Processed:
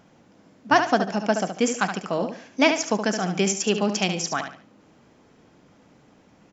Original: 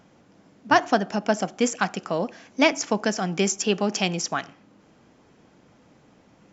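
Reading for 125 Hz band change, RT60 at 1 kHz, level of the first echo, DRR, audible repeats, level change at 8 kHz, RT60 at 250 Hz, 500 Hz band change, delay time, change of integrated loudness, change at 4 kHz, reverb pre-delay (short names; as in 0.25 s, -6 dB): +1.0 dB, none, -8.0 dB, none, 3, n/a, none, +0.5 dB, 72 ms, +0.5 dB, +0.5 dB, none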